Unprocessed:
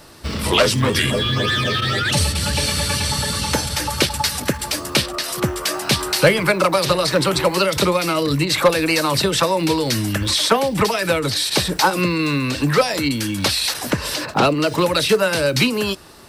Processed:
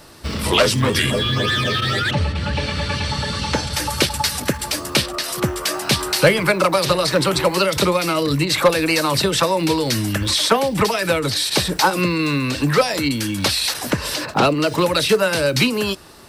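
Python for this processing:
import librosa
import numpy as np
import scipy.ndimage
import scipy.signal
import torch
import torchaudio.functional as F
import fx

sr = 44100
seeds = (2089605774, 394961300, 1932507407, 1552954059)

y = fx.lowpass(x, sr, hz=fx.line((2.1, 2100.0), (3.72, 5800.0)), slope=12, at=(2.1, 3.72), fade=0.02)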